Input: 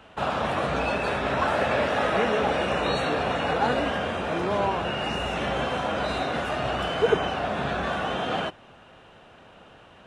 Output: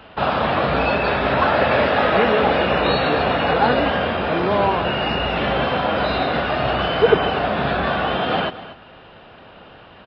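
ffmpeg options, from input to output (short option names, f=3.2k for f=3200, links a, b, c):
-filter_complex "[0:a]asplit=2[a][b];[b]aecho=0:1:239:0.168[c];[a][c]amix=inputs=2:normalize=0,aresample=11025,aresample=44100,volume=7dB"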